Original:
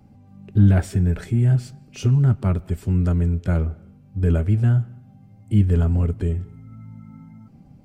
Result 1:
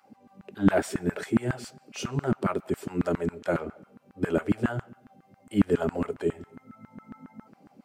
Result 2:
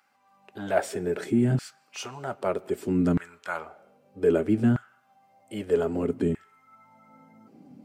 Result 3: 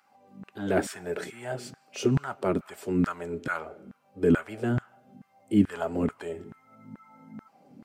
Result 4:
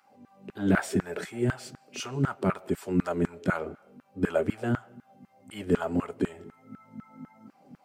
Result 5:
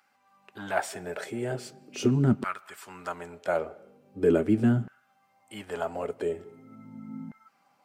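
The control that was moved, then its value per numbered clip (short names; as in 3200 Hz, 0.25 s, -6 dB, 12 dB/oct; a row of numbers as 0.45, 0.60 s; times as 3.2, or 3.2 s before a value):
LFO high-pass, rate: 7.3, 0.63, 2.3, 4, 0.41 Hz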